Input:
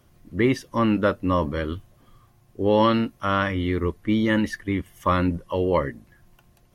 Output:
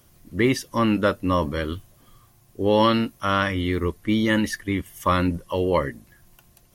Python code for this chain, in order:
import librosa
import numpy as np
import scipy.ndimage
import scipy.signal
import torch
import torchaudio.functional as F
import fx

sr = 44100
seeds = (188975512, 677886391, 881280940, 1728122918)

y = fx.high_shelf(x, sr, hz=4200.0, db=11.5)